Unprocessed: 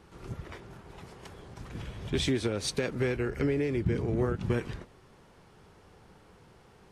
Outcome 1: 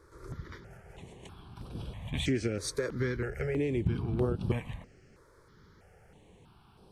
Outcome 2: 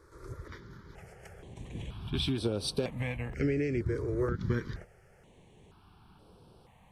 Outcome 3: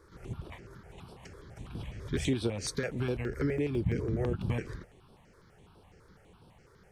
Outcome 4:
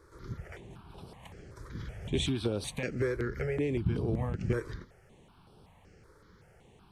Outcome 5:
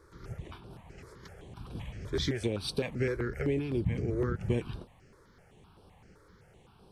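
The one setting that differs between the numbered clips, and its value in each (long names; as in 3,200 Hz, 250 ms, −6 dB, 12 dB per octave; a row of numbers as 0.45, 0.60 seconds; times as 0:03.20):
step-sequenced phaser, speed: 3.1, 2.1, 12, 5.3, 7.8 Hertz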